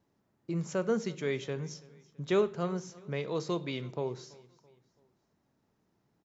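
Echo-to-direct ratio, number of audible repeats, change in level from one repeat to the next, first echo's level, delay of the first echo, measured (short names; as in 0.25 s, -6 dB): -21.5 dB, 2, -7.0 dB, -22.5 dB, 0.332 s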